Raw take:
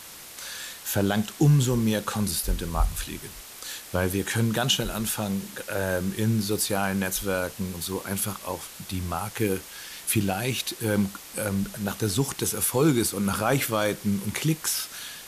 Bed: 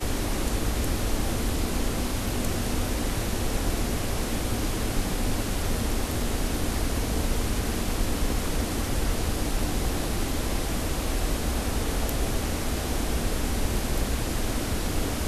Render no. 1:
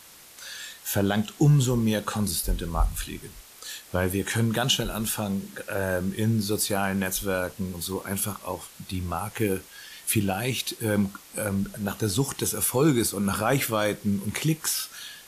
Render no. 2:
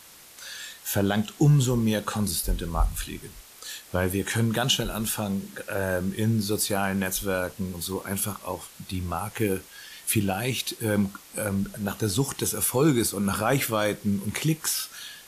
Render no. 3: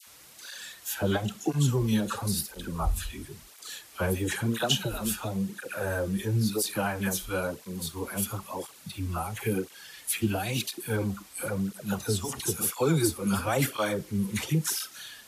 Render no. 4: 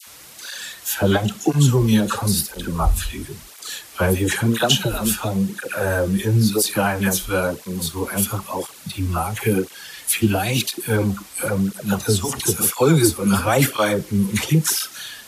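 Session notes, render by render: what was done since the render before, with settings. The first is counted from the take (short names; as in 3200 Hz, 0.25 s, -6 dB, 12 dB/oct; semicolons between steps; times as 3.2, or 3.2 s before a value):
noise print and reduce 6 dB
nothing audible
dispersion lows, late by 69 ms, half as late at 1100 Hz; tape flanging out of phase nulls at 0.98 Hz, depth 7.8 ms
gain +9.5 dB; limiter -2 dBFS, peak gain reduction 1.5 dB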